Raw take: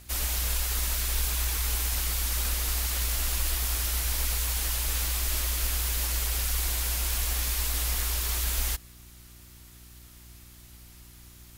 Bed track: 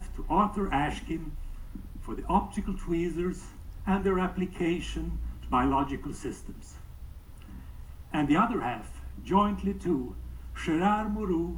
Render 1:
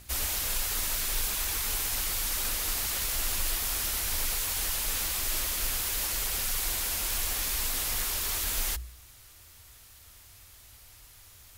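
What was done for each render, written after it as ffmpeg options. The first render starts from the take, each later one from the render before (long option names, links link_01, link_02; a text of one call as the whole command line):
ffmpeg -i in.wav -af "bandreject=frequency=60:width_type=h:width=4,bandreject=frequency=120:width_type=h:width=4,bandreject=frequency=180:width_type=h:width=4,bandreject=frequency=240:width_type=h:width=4,bandreject=frequency=300:width_type=h:width=4,bandreject=frequency=360:width_type=h:width=4" out.wav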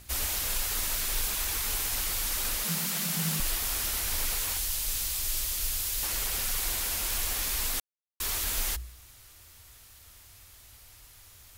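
ffmpeg -i in.wav -filter_complex "[0:a]asettb=1/sr,asplit=3[link_01][link_02][link_03];[link_01]atrim=end=2.644[link_04];[link_02]atrim=start=2.64:end=3.4,asetpts=PTS-STARTPTS,afade=type=in:duration=0.004:curve=qsin,afade=type=out:start_time=0.756:duration=0.004:curve=qsin,afreqshift=140[link_05];[link_03]atrim=start=3.396[link_06];[link_04][link_05]acrossfade=duration=0.004:curve1=hsin:curve2=qsin[link_07];[link_07][link_06]acrossfade=duration=0.004:curve1=qsin:curve2=hsin,asettb=1/sr,asplit=3[link_08][link_09][link_10];[link_08]atrim=end=4.574[link_11];[link_09]atrim=start=4.57:end=6.03,asetpts=PTS-STARTPTS,afade=type=in:duration=0.004:curve=qsin,afade=type=out:start_time=1.456:duration=0.004:curve=qsin,acrossover=split=130|3000[link_12][link_13][link_14];[link_13]acompressor=threshold=-46dB:ratio=6:attack=3.2:release=140:knee=2.83:detection=peak[link_15];[link_12][link_15][link_14]amix=inputs=3:normalize=0[link_16];[link_10]atrim=start=6.026[link_17];[link_11][link_16]acrossfade=duration=0.004:curve1=hsin:curve2=qsin[link_18];[link_18][link_17]acrossfade=duration=0.004:curve1=qsin:curve2=hsin,asplit=3[link_19][link_20][link_21];[link_19]atrim=end=7.8,asetpts=PTS-STARTPTS,afade=type=out:start_time=7.796:duration=0.004:curve=hsin[link_22];[link_20]atrim=start=7.8:end=8.2,asetpts=PTS-STARTPTS,volume=0[link_23];[link_21]atrim=start=8.2,asetpts=PTS-STARTPTS,afade=type=in:duration=0.004:curve=hsin[link_24];[link_22][link_23][link_24]concat=n=3:v=0:a=1" out.wav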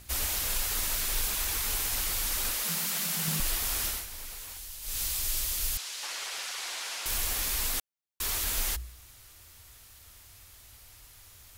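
ffmpeg -i in.wav -filter_complex "[0:a]asettb=1/sr,asplit=3[link_01][link_02][link_03];[link_01]atrim=end=2.514[link_04];[link_02]atrim=start=2.51:end=3.28,asetpts=PTS-STARTPTS,afade=type=in:duration=0.004:curve=qsin,afade=type=out:start_time=0.766:duration=0.004:curve=qsin,lowshelf=frequency=210:gain=-11[link_05];[link_03]atrim=start=3.276[link_06];[link_04][link_05]acrossfade=duration=0.004:curve1=hsin:curve2=qsin[link_07];[link_07][link_06]acrossfade=duration=0.004:curve1=qsin:curve2=hsin,asettb=1/sr,asplit=3[link_08][link_09][link_10];[link_08]atrim=end=5.774[link_11];[link_09]atrim=start=5.77:end=7.06,asetpts=PTS-STARTPTS,afade=type=in:duration=0.004:curve=qsin,afade=type=out:start_time=1.286:duration=0.004:curve=qsin,highpass=650,lowpass=6100[link_12];[link_10]atrim=start=7.056[link_13];[link_11][link_12]acrossfade=duration=0.004:curve1=hsin:curve2=qsin[link_14];[link_14][link_13]acrossfade=duration=0.004:curve1=qsin:curve2=hsin,asplit=3[link_15][link_16][link_17];[link_15]atrim=end=4.07,asetpts=PTS-STARTPTS,afade=type=out:start_time=3.86:duration=0.21:silence=0.266073[link_18];[link_16]atrim=start=4.07:end=4.81,asetpts=PTS-STARTPTS,volume=-11.5dB[link_19];[link_17]atrim=start=4.81,asetpts=PTS-STARTPTS,afade=type=in:duration=0.21:silence=0.266073[link_20];[link_18][link_19][link_20]concat=n=3:v=0:a=1" out.wav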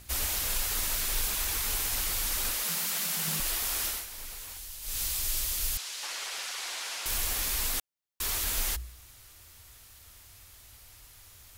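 ffmpeg -i in.wav -filter_complex "[0:a]asettb=1/sr,asplit=3[link_01][link_02][link_03];[link_01]atrim=end=2.644[link_04];[link_02]atrim=start=2.64:end=4.18,asetpts=PTS-STARTPTS,afade=type=in:duration=0.004:curve=qsin,afade=type=out:start_time=1.536:duration=0.004:curve=qsin,bass=frequency=250:gain=-6,treble=frequency=4000:gain=0[link_05];[link_03]atrim=start=4.176[link_06];[link_04][link_05]acrossfade=duration=0.004:curve1=hsin:curve2=qsin[link_07];[link_07][link_06]acrossfade=duration=0.004:curve1=qsin:curve2=hsin" out.wav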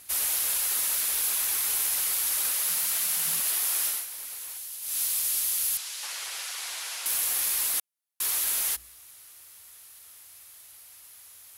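ffmpeg -i in.wav -af "highpass=frequency=630:poles=1,equalizer=frequency=11000:width=1.8:gain=9" out.wav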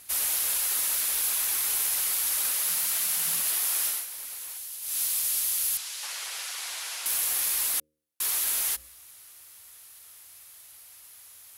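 ffmpeg -i in.wav -af "bandreject=frequency=76.79:width_type=h:width=4,bandreject=frequency=153.58:width_type=h:width=4,bandreject=frequency=230.37:width_type=h:width=4,bandreject=frequency=307.16:width_type=h:width=4,bandreject=frequency=383.95:width_type=h:width=4,bandreject=frequency=460.74:width_type=h:width=4,bandreject=frequency=537.53:width_type=h:width=4" out.wav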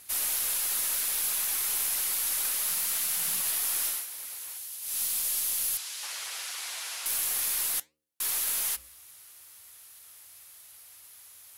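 ffmpeg -i in.wav -filter_complex "[0:a]flanger=delay=4.7:depth=4.4:regen=86:speed=1.5:shape=sinusoidal,asplit=2[link_01][link_02];[link_02]aeval=exprs='clip(val(0),-1,0.015)':channel_layout=same,volume=-7dB[link_03];[link_01][link_03]amix=inputs=2:normalize=0" out.wav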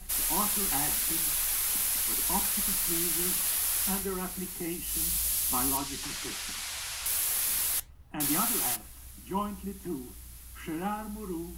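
ffmpeg -i in.wav -i bed.wav -filter_complex "[1:a]volume=-8dB[link_01];[0:a][link_01]amix=inputs=2:normalize=0" out.wav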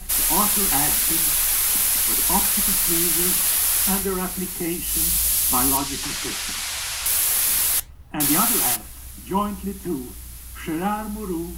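ffmpeg -i in.wav -af "volume=9dB" out.wav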